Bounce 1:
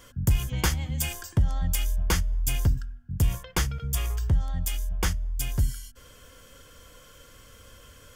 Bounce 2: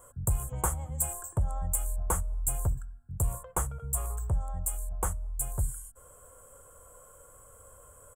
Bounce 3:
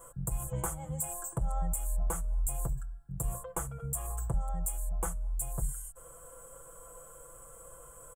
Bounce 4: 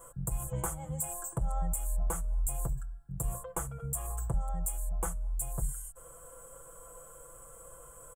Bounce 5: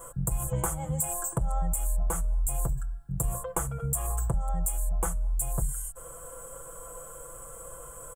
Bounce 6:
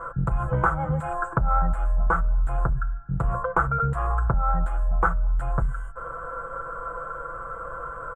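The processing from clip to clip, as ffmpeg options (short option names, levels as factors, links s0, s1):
-af "firequalizer=gain_entry='entry(110,0);entry(250,-8);entry(400,2);entry(590,8);entry(1200,6);entry(1800,-11);entry(5000,-27);entry(7800,13);entry(13000,3)':delay=0.05:min_phase=1,volume=0.501"
-af "aecho=1:1:6:0.97,alimiter=limit=0.0794:level=0:latency=1:release=275"
-af anull
-af "acompressor=threshold=0.0251:ratio=3,volume=2.37"
-af "asoftclip=type=tanh:threshold=0.0944,lowpass=f=1400:t=q:w=6.2,volume=2.11"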